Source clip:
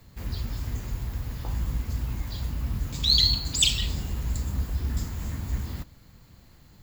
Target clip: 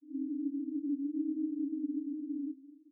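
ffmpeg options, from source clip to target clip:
-af "asetrate=103194,aresample=44100,asuperpass=centerf=290:order=12:qfactor=5.7,volume=7.5dB"

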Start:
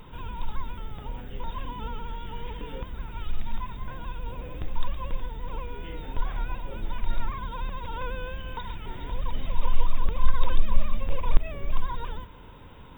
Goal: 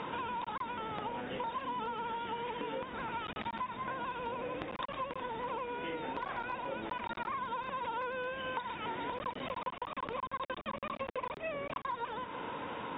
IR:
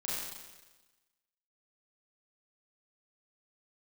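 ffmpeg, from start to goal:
-filter_complex "[0:a]bandreject=f=400:w=12,asplit=2[a][b];[b]alimiter=limit=-15.5dB:level=0:latency=1:release=106,volume=1.5dB[c];[a][c]amix=inputs=2:normalize=0,aeval=exprs='clip(val(0),-1,0.133)':c=same,highpass=310,lowpass=2.6k,acompressor=threshold=-43dB:ratio=6,volume=7dB"

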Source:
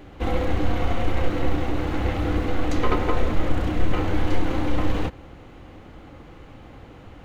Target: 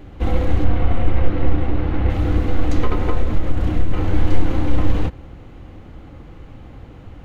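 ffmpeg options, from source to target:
-filter_complex "[0:a]asettb=1/sr,asplit=3[a][b][c];[a]atrim=end=0.644[d];[b]atrim=start=0.64:end=2.1,asetpts=PTS-STARTPTS,afade=t=in:d=0.004:c=qsin,afade=t=out:st=1.456:d=0.004:c=qsin,lowpass=3.3k[e];[c]atrim=start=2.096[f];[d][e]acrossfade=d=0.004:c1=hsin:c2=qsin[g];[g][f]acrossfade=d=0.004:c1=qsin:c2=hsin,asettb=1/sr,asplit=3[h][i][j];[h]atrim=end=2.814[k];[i]atrim=start=2.81:end=4.13,asetpts=PTS-STARTPTS,afade=t=in:d=0.004:c=qsin,afade=t=out:st=1.316:d=0.004:c=qsin,acompressor=threshold=-16dB:ratio=6[l];[j]atrim=start=4.126[m];[k][l]acrossfade=d=0.004:c1=hsin:c2=qsin[n];[n][m]acrossfade=d=0.004:c1=qsin:c2=hsin,lowshelf=f=230:g=9,volume=-1dB"

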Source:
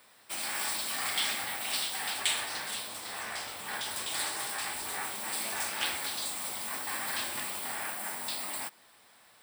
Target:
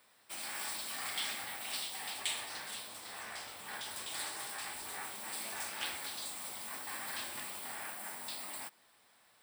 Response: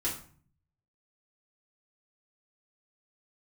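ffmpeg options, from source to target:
-filter_complex "[0:a]asettb=1/sr,asplit=3[a][b][c];[a]atrim=end=1.804[d];[b]atrim=start=1.8:end=2.5,asetpts=PTS-STARTPTS,afade=t=in:d=0.004:c=qsin,afade=t=out:st=0.696:d=0.004:c=qsin,equalizer=f=1.5k:w=4.1:g=-5.5[e];[c]atrim=start=2.496[f];[d][e]acrossfade=d=0.004:c1=hsin:c2=qsin[g];[g][f]acrossfade=d=0.004:c1=qsin:c2=hsin,volume=-7dB"

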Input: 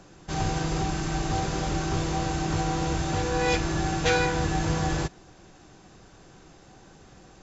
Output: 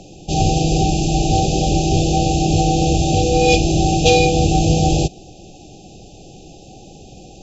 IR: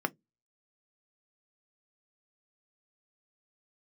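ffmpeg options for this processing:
-af "afftfilt=real='re*(1-between(b*sr/4096,830,2400))':imag='im*(1-between(b*sr/4096,830,2400))':win_size=4096:overlap=0.75,acontrast=72,volume=5dB"

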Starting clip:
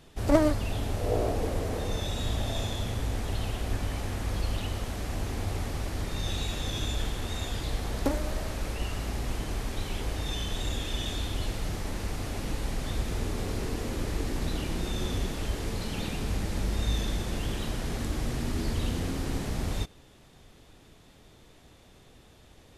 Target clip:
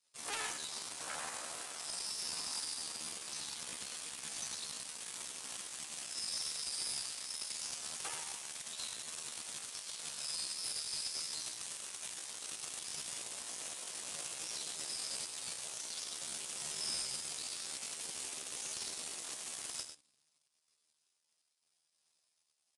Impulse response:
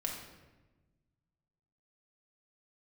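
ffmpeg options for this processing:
-filter_complex "[0:a]asplit=2[a][b];[b]equalizer=f=100:t=o:w=0.67:g=9,equalizer=f=1k:t=o:w=0.67:g=-3,equalizer=f=2.5k:t=o:w=0.67:g=4,equalizer=f=6.3k:t=o:w=0.67:g=10[c];[1:a]atrim=start_sample=2205[d];[c][d]afir=irnorm=-1:irlink=0,volume=-15.5dB[e];[a][e]amix=inputs=2:normalize=0,asoftclip=type=tanh:threshold=-10.5dB,asplit=2[f][g];[g]adelay=18,volume=-7.5dB[h];[f][h]amix=inputs=2:normalize=0,aeval=exprs='0.282*(cos(1*acos(clip(val(0)/0.282,-1,1)))-cos(1*PI/2))+0.126*(cos(2*acos(clip(val(0)/0.282,-1,1)))-cos(2*PI/2))+0.0794*(cos(3*acos(clip(val(0)/0.282,-1,1)))-cos(3*PI/2))+0.1*(cos(6*acos(clip(val(0)/0.282,-1,1)))-cos(6*PI/2))+0.0126*(cos(8*acos(clip(val(0)/0.282,-1,1)))-cos(8*PI/2))':c=same,aderivative,aresample=16000,asoftclip=type=hard:threshold=-35dB,aresample=44100,aecho=1:1:103:0.355,asetrate=62367,aresample=44100,atempo=0.707107,volume=1dB"

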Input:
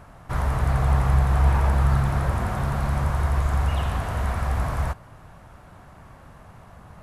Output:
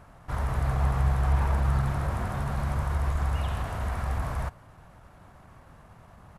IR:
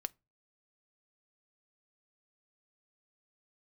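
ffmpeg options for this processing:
-af "atempo=1.1,volume=-5dB"

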